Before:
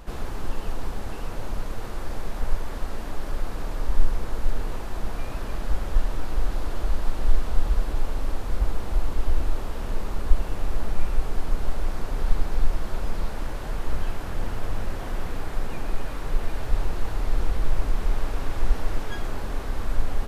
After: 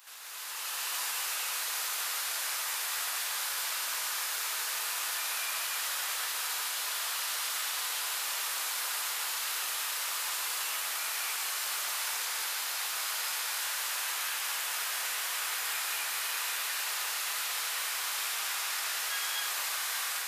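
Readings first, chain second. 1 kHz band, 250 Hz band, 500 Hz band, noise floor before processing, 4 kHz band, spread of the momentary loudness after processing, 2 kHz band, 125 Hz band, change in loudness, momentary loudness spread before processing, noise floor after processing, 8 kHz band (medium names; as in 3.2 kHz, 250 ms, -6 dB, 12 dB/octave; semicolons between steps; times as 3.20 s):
-0.5 dB, under -25 dB, -14.0 dB, -32 dBFS, +12.5 dB, 0 LU, +7.5 dB, under -40 dB, +1.0 dB, 6 LU, -35 dBFS, no reading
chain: high-pass 1.3 kHz 12 dB/octave; tilt EQ +4 dB/octave; peak limiter -34.5 dBFS, peak gain reduction 10.5 dB; level rider gain up to 9 dB; flange 0.28 Hz, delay 6.9 ms, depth 9.7 ms, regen +70%; gated-style reverb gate 300 ms rising, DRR -4 dB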